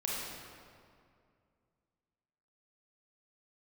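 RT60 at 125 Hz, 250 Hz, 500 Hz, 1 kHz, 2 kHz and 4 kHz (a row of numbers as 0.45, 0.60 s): 2.9, 2.6, 2.4, 2.2, 1.8, 1.4 s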